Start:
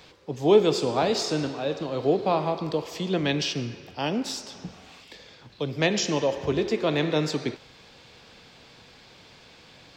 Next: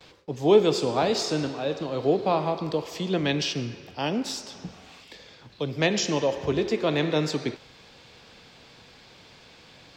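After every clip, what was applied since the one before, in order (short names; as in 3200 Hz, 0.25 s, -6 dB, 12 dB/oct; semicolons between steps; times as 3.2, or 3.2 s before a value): gate with hold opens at -44 dBFS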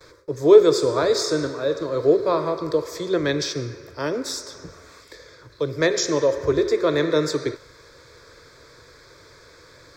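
dynamic EQ 3600 Hz, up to +5 dB, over -49 dBFS, Q 5.3; fixed phaser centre 780 Hz, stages 6; gain +7 dB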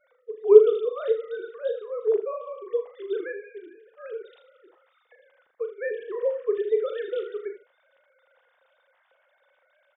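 sine-wave speech; on a send: early reflections 38 ms -8 dB, 79 ms -12 dB; on the sum: gain -5 dB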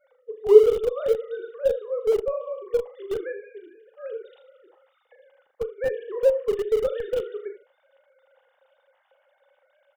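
in parallel at -7 dB: Schmitt trigger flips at -22.5 dBFS; on the sum: small resonant body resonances 550/810/2900 Hz, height 9 dB, ringing for 25 ms; gain -3 dB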